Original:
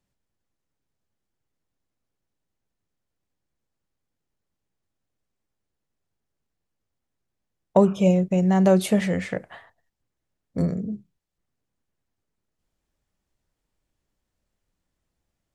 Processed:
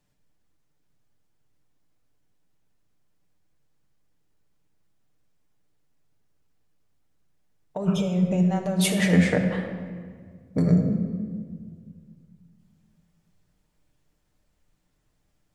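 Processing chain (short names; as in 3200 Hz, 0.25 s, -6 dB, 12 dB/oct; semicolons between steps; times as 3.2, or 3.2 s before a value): negative-ratio compressor -24 dBFS, ratio -1; on a send: reverb RT60 1.8 s, pre-delay 7 ms, DRR 2 dB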